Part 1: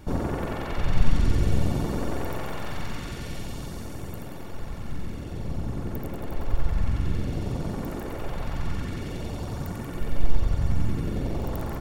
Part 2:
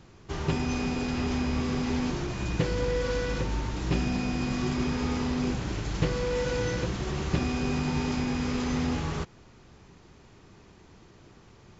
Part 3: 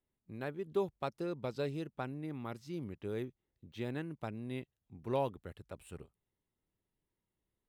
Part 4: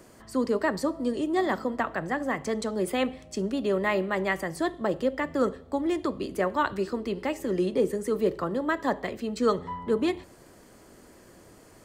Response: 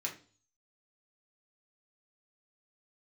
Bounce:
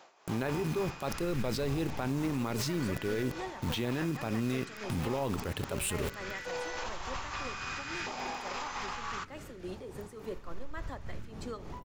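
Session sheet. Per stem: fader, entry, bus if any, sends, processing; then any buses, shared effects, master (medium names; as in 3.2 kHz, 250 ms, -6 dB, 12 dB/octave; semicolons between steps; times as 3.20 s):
-15.0 dB, 0.35 s, bus A, no send, none
+1.0 dB, 0.00 s, bus A, send -21 dB, LFO high-pass saw up 0.62 Hz 650–1600 Hz; auto duck -10 dB, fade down 0.60 s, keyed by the third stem
-3.0 dB, 0.00 s, no bus, send -14.5 dB, companded quantiser 6-bit; level flattener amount 100%
-10.0 dB, 2.05 s, bus A, no send, bass shelf 500 Hz -6 dB
bus A: 0.0 dB, tremolo 3.5 Hz, depth 64%; peak limiter -29 dBFS, peak gain reduction 9.5 dB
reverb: on, RT60 0.40 s, pre-delay 3 ms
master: peak limiter -23.5 dBFS, peak gain reduction 10.5 dB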